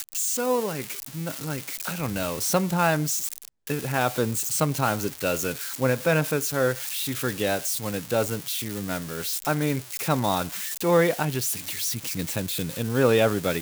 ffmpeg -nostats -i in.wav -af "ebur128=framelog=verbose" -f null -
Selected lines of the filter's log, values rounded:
Integrated loudness:
  I:         -25.5 LUFS
  Threshold: -35.5 LUFS
Loudness range:
  LRA:         2.1 LU
  Threshold: -45.6 LUFS
  LRA low:   -26.9 LUFS
  LRA high:  -24.7 LUFS